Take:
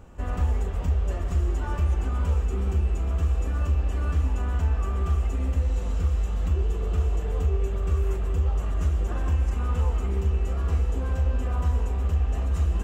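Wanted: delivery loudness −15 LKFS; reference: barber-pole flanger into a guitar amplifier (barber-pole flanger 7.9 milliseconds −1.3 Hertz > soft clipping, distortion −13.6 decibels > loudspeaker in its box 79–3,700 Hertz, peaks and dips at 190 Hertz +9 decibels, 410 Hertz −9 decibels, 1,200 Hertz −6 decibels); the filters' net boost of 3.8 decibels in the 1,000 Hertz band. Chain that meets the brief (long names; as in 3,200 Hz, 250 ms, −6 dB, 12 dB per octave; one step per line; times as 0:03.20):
parametric band 1,000 Hz +8 dB
barber-pole flanger 7.9 ms −1.3 Hz
soft clipping −24 dBFS
loudspeaker in its box 79–3,700 Hz, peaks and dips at 190 Hz +9 dB, 410 Hz −9 dB, 1,200 Hz −6 dB
level +21 dB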